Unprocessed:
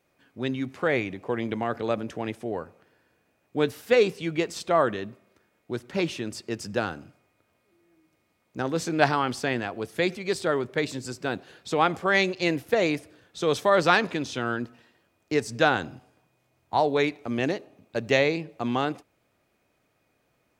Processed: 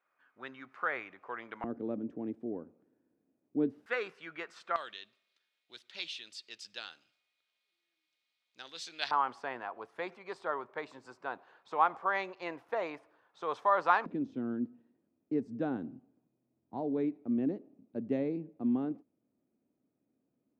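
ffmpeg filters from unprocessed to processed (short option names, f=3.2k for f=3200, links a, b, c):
-af "asetnsamples=n=441:p=0,asendcmd='1.64 bandpass f 270;3.86 bandpass f 1400;4.76 bandpass f 3700;9.11 bandpass f 1000;14.06 bandpass f 250',bandpass=f=1.3k:t=q:w=2.9:csg=0"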